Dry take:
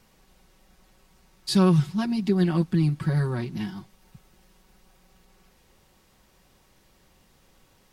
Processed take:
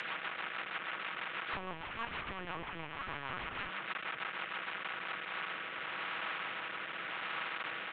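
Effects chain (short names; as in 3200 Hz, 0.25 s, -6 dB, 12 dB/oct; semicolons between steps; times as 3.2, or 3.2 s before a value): delta modulation 16 kbps, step -31 dBFS; HPF 300 Hz 6 dB/oct; bell 2500 Hz +9 dB 1.4 oct; comb 6.2 ms, depth 47%; compressor 2:1, threshold -29 dBFS, peak gain reduction 7 dB; auto-wah 790–1800 Hz, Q 3.9, down, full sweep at -22.5 dBFS; rotary speaker horn 6.3 Hz, later 0.85 Hz, at 4.72; 1.53–3.69 LPC vocoder at 8 kHz pitch kept; spectral compressor 2:1; gain +5 dB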